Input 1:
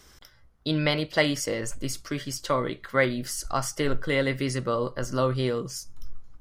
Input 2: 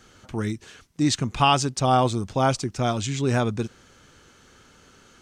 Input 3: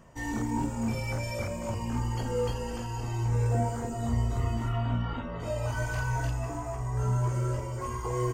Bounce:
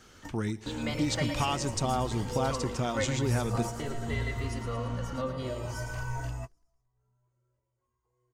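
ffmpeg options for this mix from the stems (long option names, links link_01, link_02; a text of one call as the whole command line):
ffmpeg -i stem1.wav -i stem2.wav -i stem3.wav -filter_complex "[0:a]asplit=2[link_01][link_02];[link_02]adelay=2.6,afreqshift=0.49[link_03];[link_01][link_03]amix=inputs=2:normalize=1,volume=-8.5dB,asplit=3[link_04][link_05][link_06];[link_05]volume=-8.5dB[link_07];[1:a]acompressor=threshold=-24dB:ratio=6,volume=-2.5dB,asplit=2[link_08][link_09];[link_09]volume=-21.5dB[link_10];[2:a]volume=-5.5dB[link_11];[link_06]apad=whole_len=367433[link_12];[link_11][link_12]sidechaingate=range=-42dB:threshold=-60dB:ratio=16:detection=peak[link_13];[link_07][link_10]amix=inputs=2:normalize=0,aecho=0:1:112|224|336|448|560|672|784|896|1008:1|0.57|0.325|0.185|0.106|0.0602|0.0343|0.0195|0.0111[link_14];[link_04][link_08][link_13][link_14]amix=inputs=4:normalize=0" out.wav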